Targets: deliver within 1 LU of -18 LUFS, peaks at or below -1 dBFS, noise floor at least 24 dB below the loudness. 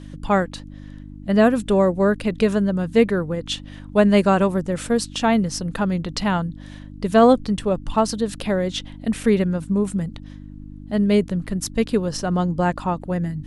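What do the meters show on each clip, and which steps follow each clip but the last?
hum 50 Hz; highest harmonic 300 Hz; hum level -37 dBFS; loudness -21.0 LUFS; peak level -4.0 dBFS; loudness target -18.0 LUFS
-> de-hum 50 Hz, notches 6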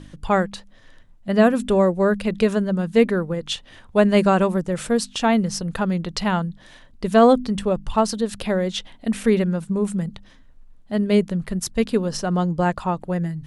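hum not found; loudness -21.0 LUFS; peak level -4.5 dBFS; loudness target -18.0 LUFS
-> trim +3 dB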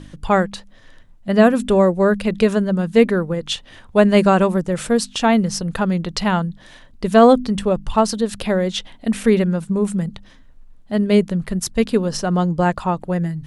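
loudness -18.0 LUFS; peak level -1.5 dBFS; noise floor -46 dBFS

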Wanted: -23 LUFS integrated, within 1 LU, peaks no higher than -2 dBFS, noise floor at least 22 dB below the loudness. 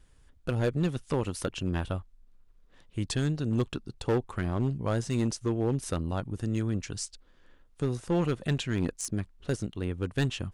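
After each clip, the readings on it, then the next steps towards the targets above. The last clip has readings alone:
clipped samples 1.1%; clipping level -20.5 dBFS; loudness -31.5 LUFS; peak level -20.5 dBFS; loudness target -23.0 LUFS
-> clip repair -20.5 dBFS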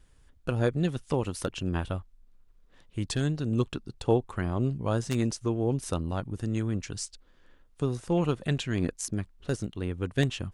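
clipped samples 0.0%; loudness -30.5 LUFS; peak level -11.5 dBFS; loudness target -23.0 LUFS
-> trim +7.5 dB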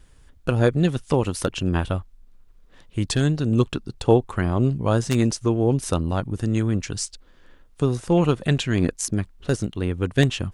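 loudness -23.0 LUFS; peak level -4.0 dBFS; noise floor -53 dBFS

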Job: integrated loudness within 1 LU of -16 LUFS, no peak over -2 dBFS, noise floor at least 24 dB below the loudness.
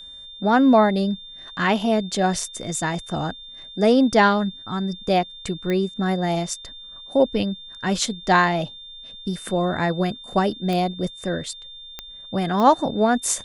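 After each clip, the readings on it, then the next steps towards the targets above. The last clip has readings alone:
clicks found 4; steady tone 3.6 kHz; tone level -38 dBFS; loudness -22.0 LUFS; peak level -4.5 dBFS; loudness target -16.0 LUFS
-> de-click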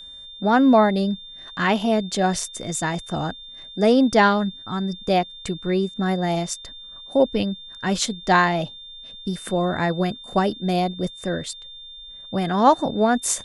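clicks found 0; steady tone 3.6 kHz; tone level -38 dBFS
-> band-stop 3.6 kHz, Q 30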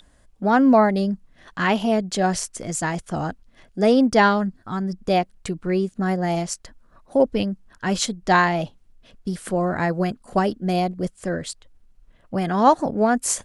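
steady tone not found; loudness -22.0 LUFS; peak level -4.5 dBFS; loudness target -16.0 LUFS
-> trim +6 dB; peak limiter -2 dBFS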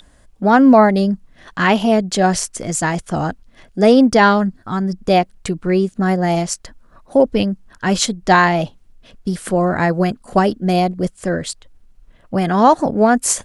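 loudness -16.0 LUFS; peak level -2.0 dBFS; noise floor -51 dBFS

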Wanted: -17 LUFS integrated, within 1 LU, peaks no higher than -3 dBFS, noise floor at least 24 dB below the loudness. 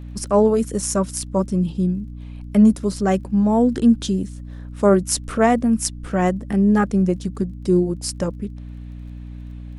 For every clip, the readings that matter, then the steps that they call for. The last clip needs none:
tick rate 23 per s; hum 60 Hz; highest harmonic 300 Hz; hum level -32 dBFS; loudness -19.5 LUFS; peak level -1.5 dBFS; loudness target -17.0 LUFS
-> de-click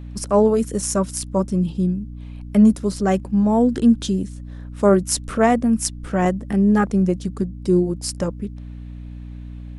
tick rate 0 per s; hum 60 Hz; highest harmonic 300 Hz; hum level -32 dBFS
-> de-hum 60 Hz, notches 5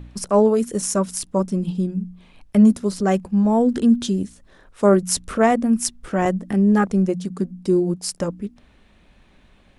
hum not found; loudness -20.0 LUFS; peak level -2.0 dBFS; loudness target -17.0 LUFS
-> trim +3 dB; peak limiter -3 dBFS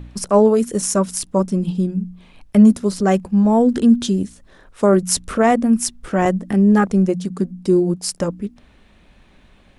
loudness -17.0 LUFS; peak level -3.0 dBFS; noise floor -51 dBFS

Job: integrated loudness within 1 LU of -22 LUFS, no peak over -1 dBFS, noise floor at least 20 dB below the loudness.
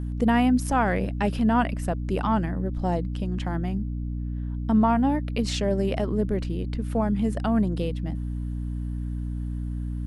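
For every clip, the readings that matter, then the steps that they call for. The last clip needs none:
hum 60 Hz; highest harmonic 300 Hz; hum level -27 dBFS; loudness -26.0 LUFS; peak level -10.0 dBFS; loudness target -22.0 LUFS
-> hum notches 60/120/180/240/300 Hz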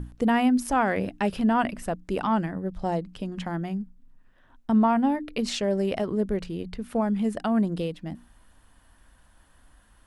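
hum not found; loudness -26.5 LUFS; peak level -11.5 dBFS; loudness target -22.0 LUFS
-> trim +4.5 dB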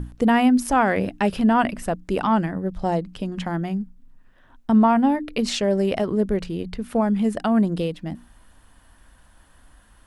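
loudness -22.0 LUFS; peak level -7.0 dBFS; noise floor -55 dBFS

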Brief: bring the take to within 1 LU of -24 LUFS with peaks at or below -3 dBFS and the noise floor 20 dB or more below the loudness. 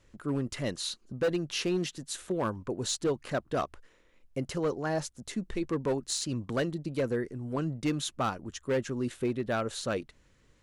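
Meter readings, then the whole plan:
clipped samples 1.4%; clipping level -23.0 dBFS; loudness -32.5 LUFS; peak level -23.0 dBFS; loudness target -24.0 LUFS
-> clip repair -23 dBFS; trim +8.5 dB

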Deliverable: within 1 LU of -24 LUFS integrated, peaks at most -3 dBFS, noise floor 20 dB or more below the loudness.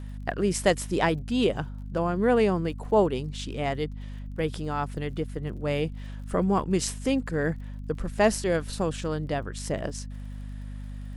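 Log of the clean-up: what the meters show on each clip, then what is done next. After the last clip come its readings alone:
tick rate 46 per s; hum 50 Hz; highest harmonic 250 Hz; hum level -35 dBFS; loudness -27.5 LUFS; peak level -6.5 dBFS; loudness target -24.0 LUFS
-> de-click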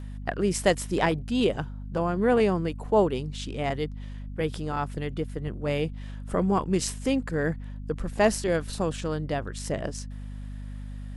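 tick rate 0.27 per s; hum 50 Hz; highest harmonic 250 Hz; hum level -35 dBFS
-> de-hum 50 Hz, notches 5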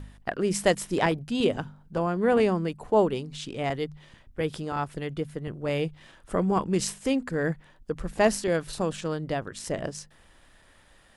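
hum not found; loudness -28.0 LUFS; peak level -7.5 dBFS; loudness target -24.0 LUFS
-> trim +4 dB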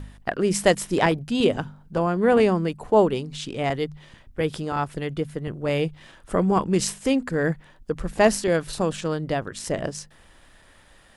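loudness -24.0 LUFS; peak level -3.5 dBFS; noise floor -54 dBFS

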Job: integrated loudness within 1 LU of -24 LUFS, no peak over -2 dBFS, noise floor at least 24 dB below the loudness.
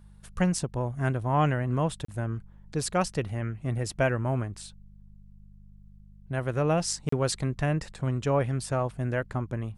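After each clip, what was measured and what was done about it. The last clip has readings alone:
dropouts 2; longest dropout 34 ms; hum 50 Hz; highest harmonic 200 Hz; hum level -51 dBFS; loudness -29.0 LUFS; peak level -12.5 dBFS; loudness target -24.0 LUFS
-> interpolate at 2.05/7.09 s, 34 ms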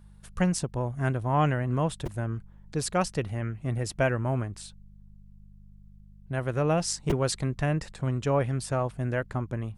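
dropouts 0; hum 50 Hz; highest harmonic 200 Hz; hum level -51 dBFS
-> de-hum 50 Hz, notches 4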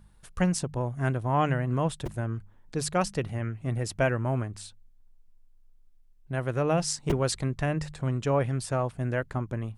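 hum not found; loudness -29.0 LUFS; peak level -13.0 dBFS; loudness target -24.0 LUFS
-> trim +5 dB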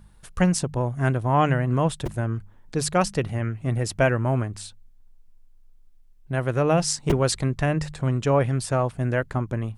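loudness -24.0 LUFS; peak level -8.0 dBFS; noise floor -52 dBFS

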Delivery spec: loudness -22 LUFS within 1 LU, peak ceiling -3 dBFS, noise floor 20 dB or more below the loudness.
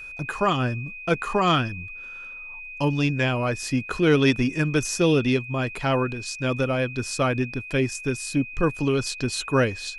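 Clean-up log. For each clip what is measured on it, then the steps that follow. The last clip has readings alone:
steady tone 2.5 kHz; tone level -36 dBFS; loudness -24.0 LUFS; peak level -8.5 dBFS; loudness target -22.0 LUFS
-> band-stop 2.5 kHz, Q 30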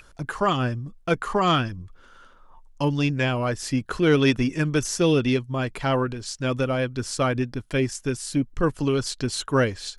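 steady tone not found; loudness -24.5 LUFS; peak level -8.0 dBFS; loudness target -22.0 LUFS
-> trim +2.5 dB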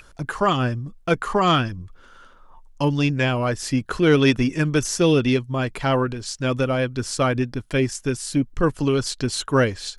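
loudness -22.0 LUFS; peak level -5.5 dBFS; noise floor -50 dBFS

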